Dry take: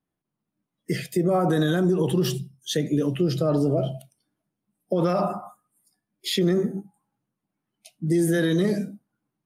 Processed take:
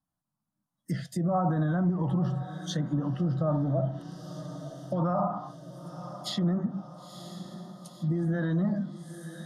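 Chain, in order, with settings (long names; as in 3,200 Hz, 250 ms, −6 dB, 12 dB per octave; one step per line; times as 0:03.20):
phaser with its sweep stopped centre 1,000 Hz, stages 4
feedback delay with all-pass diffusion 961 ms, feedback 57%, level −13.5 dB
treble cut that deepens with the level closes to 1,300 Hz, closed at −23.5 dBFS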